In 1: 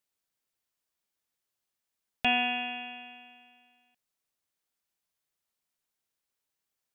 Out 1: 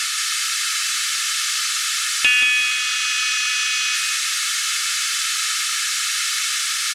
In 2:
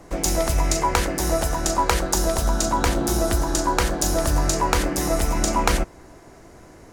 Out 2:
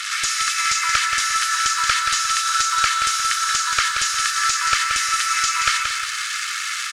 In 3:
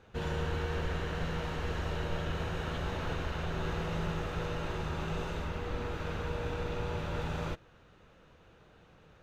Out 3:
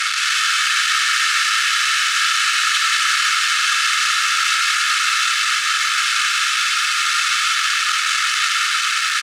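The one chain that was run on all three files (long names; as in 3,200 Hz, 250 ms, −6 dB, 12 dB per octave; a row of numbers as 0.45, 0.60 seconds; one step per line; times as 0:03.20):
linear delta modulator 64 kbit/s, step −31 dBFS
Butterworth high-pass 1,200 Hz 96 dB per octave
high-shelf EQ 6,100 Hz +12 dB
comb filter 2.3 ms, depth 43%
downward compressor 20 to 1, threshold −28 dBFS
asymmetric clip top −24.5 dBFS
high-frequency loss of the air 100 metres
on a send: repeating echo 178 ms, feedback 36%, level −6 dB
on the sum: feedback echo at a low word length 230 ms, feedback 35%, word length 9 bits, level −15 dB
normalise the peak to −3 dBFS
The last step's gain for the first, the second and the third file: +18.5, +16.0, +21.5 decibels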